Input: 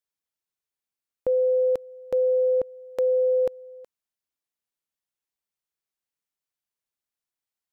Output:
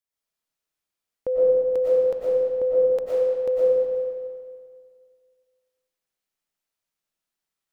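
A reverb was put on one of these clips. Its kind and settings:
comb and all-pass reverb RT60 2 s, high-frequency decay 0.8×, pre-delay 75 ms, DRR −7.5 dB
level −2.5 dB

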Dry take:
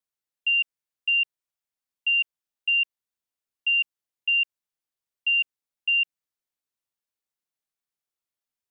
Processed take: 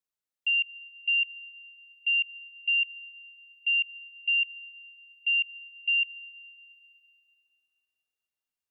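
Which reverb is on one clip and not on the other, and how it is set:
comb and all-pass reverb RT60 3.2 s, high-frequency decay 0.95×, pre-delay 5 ms, DRR 19 dB
level −3 dB

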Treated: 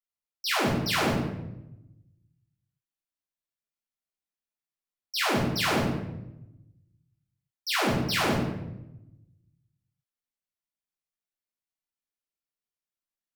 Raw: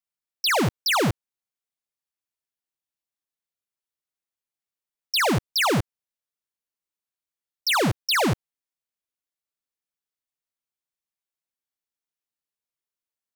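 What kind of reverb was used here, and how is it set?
rectangular room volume 320 cubic metres, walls mixed, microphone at 3.2 metres
level −13 dB

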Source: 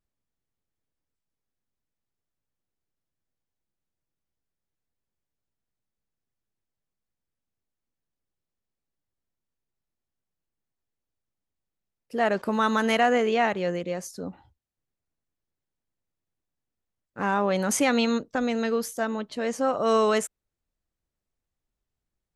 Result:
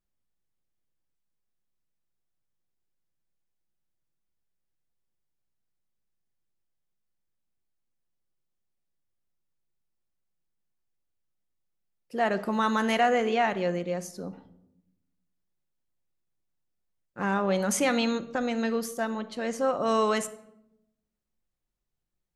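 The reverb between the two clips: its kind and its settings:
rectangular room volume 2,300 cubic metres, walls furnished, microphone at 0.92 metres
level −2.5 dB

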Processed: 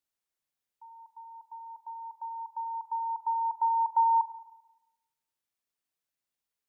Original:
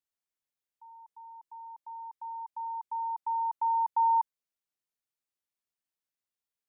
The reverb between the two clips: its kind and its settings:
spring reverb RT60 1 s, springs 35/43 ms, chirp 75 ms, DRR 11.5 dB
level +2.5 dB

